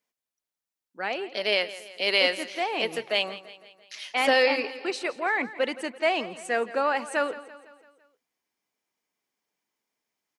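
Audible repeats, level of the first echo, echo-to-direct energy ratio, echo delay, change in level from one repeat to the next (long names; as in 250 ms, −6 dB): 4, −16.5 dB, −15.0 dB, 168 ms, −5.5 dB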